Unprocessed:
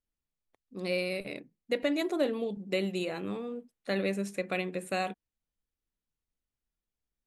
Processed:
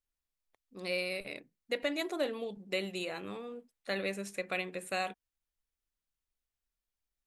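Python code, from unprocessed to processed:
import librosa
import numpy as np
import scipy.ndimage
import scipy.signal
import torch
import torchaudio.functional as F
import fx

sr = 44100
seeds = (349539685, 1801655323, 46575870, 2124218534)

y = fx.peak_eq(x, sr, hz=200.0, db=-8.5, octaves=2.8)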